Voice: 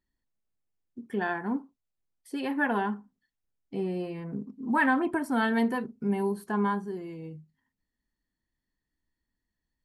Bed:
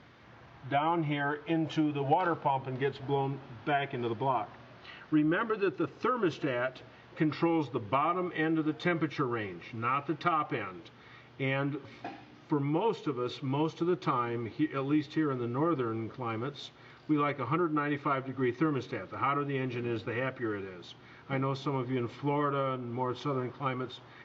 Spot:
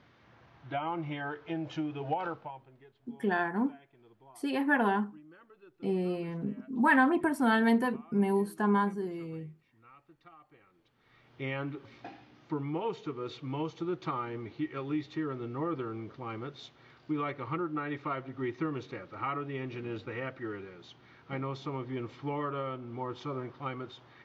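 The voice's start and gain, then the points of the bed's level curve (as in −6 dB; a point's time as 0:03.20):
2.10 s, +0.5 dB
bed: 0:02.26 −5.5 dB
0:02.85 −27 dB
0:10.60 −27 dB
0:11.36 −4.5 dB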